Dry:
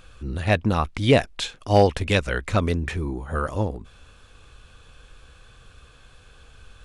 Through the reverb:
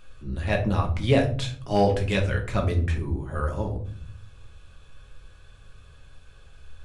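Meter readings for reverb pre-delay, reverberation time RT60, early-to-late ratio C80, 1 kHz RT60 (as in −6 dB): 5 ms, 0.50 s, 14.5 dB, 0.45 s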